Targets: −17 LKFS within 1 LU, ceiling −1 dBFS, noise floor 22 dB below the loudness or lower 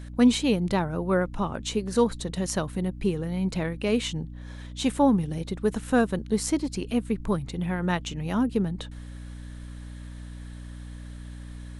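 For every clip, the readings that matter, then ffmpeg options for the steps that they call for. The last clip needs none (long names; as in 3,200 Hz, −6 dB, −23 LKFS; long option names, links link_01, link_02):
mains hum 60 Hz; hum harmonics up to 300 Hz; level of the hum −38 dBFS; integrated loudness −26.5 LKFS; sample peak −8.0 dBFS; target loudness −17.0 LKFS
→ -af "bandreject=frequency=60:width_type=h:width=6,bandreject=frequency=120:width_type=h:width=6,bandreject=frequency=180:width_type=h:width=6,bandreject=frequency=240:width_type=h:width=6,bandreject=frequency=300:width_type=h:width=6"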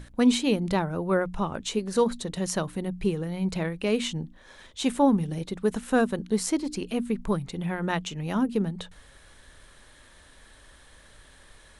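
mains hum none found; integrated loudness −27.5 LKFS; sample peak −9.5 dBFS; target loudness −17.0 LKFS
→ -af "volume=10.5dB,alimiter=limit=-1dB:level=0:latency=1"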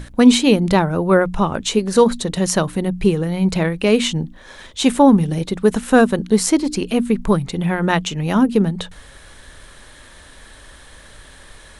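integrated loudness −17.0 LKFS; sample peak −1.0 dBFS; background noise floor −43 dBFS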